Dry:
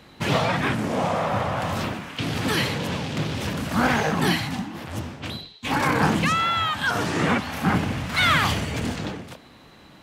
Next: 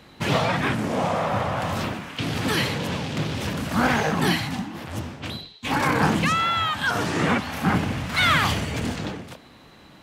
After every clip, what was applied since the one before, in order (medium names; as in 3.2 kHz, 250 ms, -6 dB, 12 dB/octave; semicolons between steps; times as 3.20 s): no audible change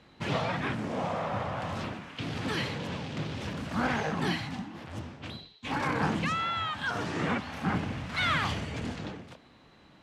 distance through air 58 m; trim -8 dB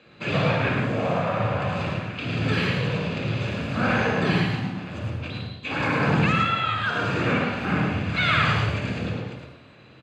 delay 108 ms -4 dB; reverberation RT60 0.85 s, pre-delay 52 ms, DRR 5 dB; trim -3.5 dB